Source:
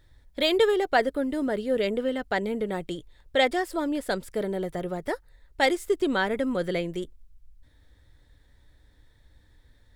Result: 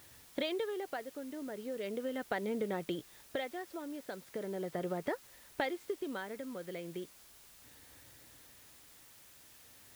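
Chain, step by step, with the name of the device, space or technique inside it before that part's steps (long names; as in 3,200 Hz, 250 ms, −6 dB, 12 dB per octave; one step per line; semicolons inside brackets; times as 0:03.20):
medium wave at night (band-pass filter 150–3,800 Hz; downward compressor, threshold −36 dBFS, peak gain reduction 18 dB; amplitude tremolo 0.38 Hz, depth 63%; steady tone 10,000 Hz −75 dBFS; white noise bed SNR 18 dB)
level +3.5 dB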